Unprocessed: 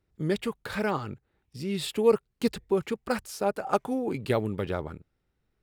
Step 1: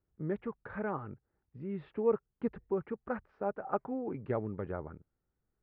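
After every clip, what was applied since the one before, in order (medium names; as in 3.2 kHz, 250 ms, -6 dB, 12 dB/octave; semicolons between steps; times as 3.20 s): low-pass 1.7 kHz 24 dB/octave; trim -7.5 dB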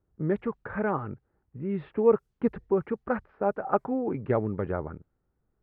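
level-controlled noise filter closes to 1.4 kHz, open at -29 dBFS; trim +8 dB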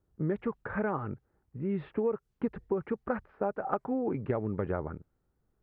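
compression 12:1, threshold -26 dBFS, peak gain reduction 12 dB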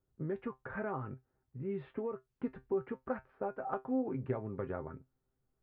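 feedback comb 130 Hz, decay 0.15 s, harmonics all, mix 80%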